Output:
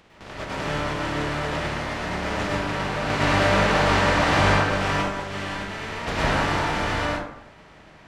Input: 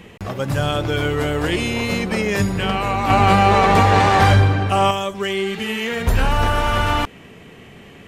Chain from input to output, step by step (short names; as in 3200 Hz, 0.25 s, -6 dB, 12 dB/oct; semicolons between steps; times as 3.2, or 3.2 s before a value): spectral contrast lowered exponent 0.18; tape spacing loss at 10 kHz 30 dB; plate-style reverb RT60 0.77 s, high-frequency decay 0.45×, pre-delay 95 ms, DRR -6.5 dB; gain -6.5 dB